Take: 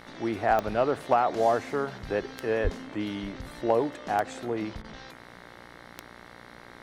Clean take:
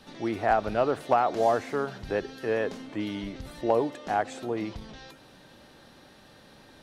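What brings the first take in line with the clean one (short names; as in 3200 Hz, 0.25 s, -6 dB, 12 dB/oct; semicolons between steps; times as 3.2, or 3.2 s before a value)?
de-click; de-hum 59.4 Hz, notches 37; 2.63–2.75 HPF 140 Hz 24 dB/oct; interpolate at 4.82, 22 ms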